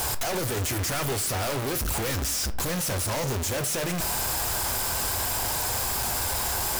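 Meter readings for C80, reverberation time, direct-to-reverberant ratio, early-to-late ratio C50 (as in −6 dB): 19.5 dB, 0.55 s, 9.0 dB, 16.0 dB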